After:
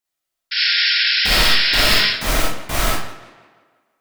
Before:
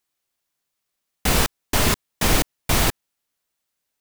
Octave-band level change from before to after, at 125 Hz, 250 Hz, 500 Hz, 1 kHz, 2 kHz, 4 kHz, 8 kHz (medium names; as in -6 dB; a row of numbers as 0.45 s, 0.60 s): -3.0 dB, -2.5 dB, +1.0 dB, +3.0 dB, +10.5 dB, +13.0 dB, -1.0 dB